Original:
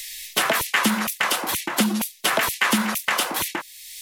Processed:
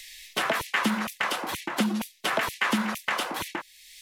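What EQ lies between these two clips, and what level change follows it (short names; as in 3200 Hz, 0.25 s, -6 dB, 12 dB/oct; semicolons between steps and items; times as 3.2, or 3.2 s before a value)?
LPF 3300 Hz 6 dB/oct; -4.0 dB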